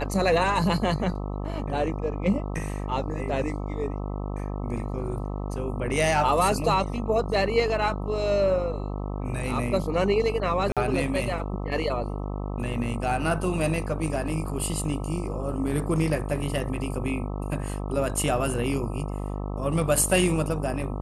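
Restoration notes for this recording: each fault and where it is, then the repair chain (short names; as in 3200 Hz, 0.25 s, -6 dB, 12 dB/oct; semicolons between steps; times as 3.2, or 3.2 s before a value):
buzz 50 Hz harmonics 26 -31 dBFS
10.72–10.77 gap 47 ms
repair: de-hum 50 Hz, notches 26; interpolate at 10.72, 47 ms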